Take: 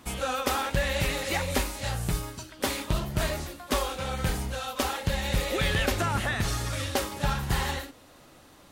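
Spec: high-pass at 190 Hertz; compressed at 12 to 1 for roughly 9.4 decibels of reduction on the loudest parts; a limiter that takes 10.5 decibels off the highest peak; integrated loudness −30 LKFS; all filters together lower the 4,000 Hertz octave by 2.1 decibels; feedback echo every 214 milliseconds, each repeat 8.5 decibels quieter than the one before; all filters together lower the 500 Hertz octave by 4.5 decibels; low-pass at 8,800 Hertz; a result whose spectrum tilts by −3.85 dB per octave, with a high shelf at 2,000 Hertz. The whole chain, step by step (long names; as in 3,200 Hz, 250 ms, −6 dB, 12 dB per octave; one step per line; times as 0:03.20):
high-pass filter 190 Hz
low-pass filter 8,800 Hz
parametric band 500 Hz −5.5 dB
high-shelf EQ 2,000 Hz +4.5 dB
parametric band 4,000 Hz −7 dB
downward compressor 12 to 1, threshold −34 dBFS
brickwall limiter −29.5 dBFS
repeating echo 214 ms, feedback 38%, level −8.5 dB
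level +8.5 dB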